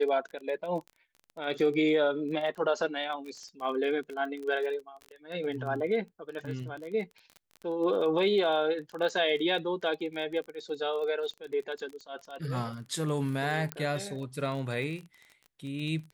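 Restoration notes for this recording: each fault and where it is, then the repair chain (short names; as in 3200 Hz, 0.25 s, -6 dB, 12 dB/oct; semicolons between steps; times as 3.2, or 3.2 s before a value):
crackle 23/s -37 dBFS
13.72 pop -16 dBFS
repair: de-click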